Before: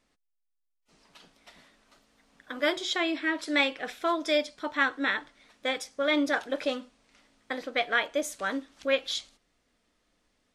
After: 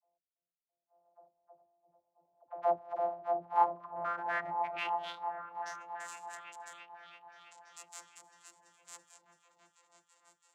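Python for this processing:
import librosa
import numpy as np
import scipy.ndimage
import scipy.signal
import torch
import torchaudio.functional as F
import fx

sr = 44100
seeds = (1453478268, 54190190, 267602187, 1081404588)

y = np.r_[np.sort(x[:len(x) // 256 * 256].reshape(-1, 256), axis=1).ravel(), x[len(x) // 256 * 256:]]
y = fx.dereverb_blind(y, sr, rt60_s=1.3)
y = fx.env_lowpass(y, sr, base_hz=750.0, full_db=-28.0)
y = fx.peak_eq(y, sr, hz=920.0, db=15.0, octaves=1.9)
y = fx.dispersion(y, sr, late='lows', ms=90.0, hz=420.0)
y = fx.cheby_harmonics(y, sr, harmonics=(3,), levels_db=(-19,), full_scale_db=-7.0)
y = fx.filter_sweep_bandpass(y, sr, from_hz=670.0, to_hz=7400.0, start_s=3.32, end_s=5.95, q=7.1)
y = fx.echo_opening(y, sr, ms=332, hz=200, octaves=1, feedback_pct=70, wet_db=0)
y = fx.pre_swell(y, sr, db_per_s=72.0, at=(3.94, 5.03))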